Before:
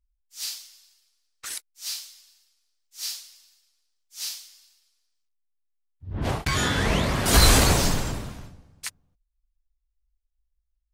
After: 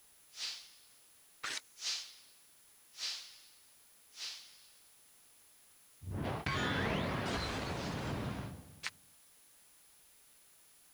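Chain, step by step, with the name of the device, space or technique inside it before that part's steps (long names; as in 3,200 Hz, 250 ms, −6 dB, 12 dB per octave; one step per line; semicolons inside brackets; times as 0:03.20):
medium wave at night (band-pass filter 100–3,600 Hz; downward compressor 5 to 1, threshold −35 dBFS, peak gain reduction 16 dB; amplitude tremolo 0.59 Hz, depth 45%; steady tone 10,000 Hz −68 dBFS; white noise bed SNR 22 dB)
0:01.53–0:02.03: parametric band 6,500 Hz +5.5 dB 0.37 octaves
level +2 dB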